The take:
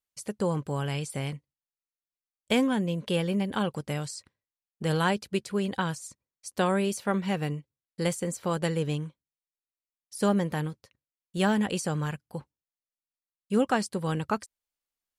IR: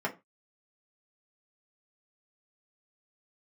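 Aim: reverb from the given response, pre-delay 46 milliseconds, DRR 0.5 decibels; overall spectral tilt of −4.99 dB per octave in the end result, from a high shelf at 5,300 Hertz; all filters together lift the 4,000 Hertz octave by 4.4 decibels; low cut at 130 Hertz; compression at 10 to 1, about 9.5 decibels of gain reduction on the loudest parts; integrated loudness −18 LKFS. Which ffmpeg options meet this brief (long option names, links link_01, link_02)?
-filter_complex "[0:a]highpass=130,equalizer=frequency=4000:width_type=o:gain=4,highshelf=frequency=5300:gain=5.5,acompressor=threshold=-29dB:ratio=10,asplit=2[link_01][link_02];[1:a]atrim=start_sample=2205,adelay=46[link_03];[link_02][link_03]afir=irnorm=-1:irlink=0,volume=-7.5dB[link_04];[link_01][link_04]amix=inputs=2:normalize=0,volume=13.5dB"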